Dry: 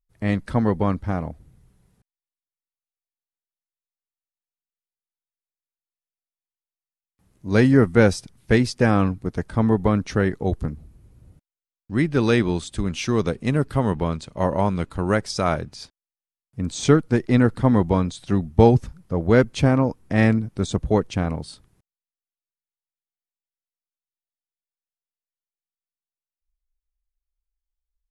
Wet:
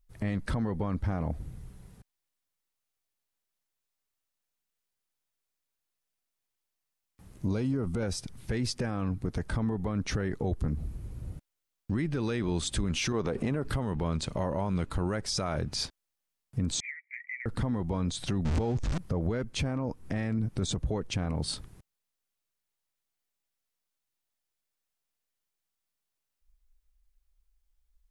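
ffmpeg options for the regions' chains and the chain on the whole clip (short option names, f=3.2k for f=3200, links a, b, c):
-filter_complex "[0:a]asettb=1/sr,asplit=3[a][b][c];[a]atrim=end=7.474[d];[b]atrim=start=7.47:end=8.03,asetpts=PTS-STARTPTS,afade=t=in:d=0.004:c=qsin,afade=t=out:st=0.556:d=0.004:c=qsin,equalizer=f=1.8k:t=o:w=0.3:g=-14.5,acompressor=threshold=-16dB:ratio=4:attack=3.2:release=140:knee=1:detection=peak[e];[c]atrim=start=8.026[f];[d][e]acrossfade=d=0.004:c1=hsin:c2=qsin[g];[g][f]acrossfade=d=0.004:c1=qsin:c2=hsin,asettb=1/sr,asplit=3[h][i][j];[h]atrim=end=13.124[k];[i]atrim=start=13.12:end=13.65,asetpts=PTS-STARTPTS,afade=t=in:d=0.004:c=qsin,afade=t=out:st=0.526:d=0.004:c=qsin,equalizer=f=720:w=0.31:g=10,acompressor=threshold=-23dB:ratio=12:attack=3.2:release=140:knee=1:detection=peak[l];[j]atrim=start=13.646[m];[k][l]acrossfade=d=0.004:c1=hsin:c2=qsin[n];[n][m]acrossfade=d=0.004:c1=qsin:c2=hsin,asettb=1/sr,asplit=3[o][p][q];[o]atrim=end=16.804[r];[p]atrim=start=16.8:end=17.46,asetpts=PTS-STARTPTS,afade=t=in:d=0.004:c=qsin,afade=t=out:st=0.656:d=0.004:c=qsin,asuperpass=centerf=2100:order=8:qfactor=4.8,acompressor=threshold=-43dB:ratio=5:attack=3.2:release=140:knee=1:detection=peak[s];[q]atrim=start=17.456[t];[r][s]acrossfade=d=0.004:c1=hsin:c2=qsin[u];[u][t]acrossfade=d=0.004:c1=qsin:c2=hsin,asettb=1/sr,asplit=3[v][w][x];[v]atrim=end=18.454[y];[w]atrim=start=18.45:end=18.98,asetpts=PTS-STARTPTS,afade=t=in:d=0.004:c=qsin,afade=t=out:st=0.526:d=0.004:c=qsin,aeval=exprs='val(0)+0.5*0.0473*sgn(val(0))':c=same,lowpass=f=7.6k:w=0.5412,lowpass=f=7.6k:w=1.3066[z];[x]atrim=start=18.976[aa];[y][z]acrossfade=d=0.004:c1=hsin:c2=qsin[ab];[ab][aa]acrossfade=d=0.004:c1=qsin:c2=hsin,lowshelf=f=88:g=5,acompressor=threshold=-29dB:ratio=6,alimiter=level_in=6dB:limit=-24dB:level=0:latency=1:release=32,volume=-6dB,volume=8dB"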